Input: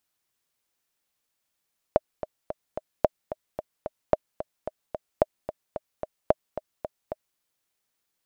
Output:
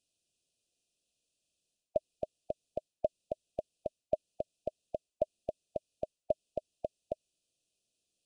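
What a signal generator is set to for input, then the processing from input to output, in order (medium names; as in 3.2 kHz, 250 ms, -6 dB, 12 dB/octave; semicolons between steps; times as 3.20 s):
metronome 221 bpm, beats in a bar 4, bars 5, 619 Hz, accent 13 dB -4.5 dBFS
reverse; compression 6:1, threshold -28 dBFS; reverse; brick-wall FIR band-stop 730–2400 Hz; resampled via 22.05 kHz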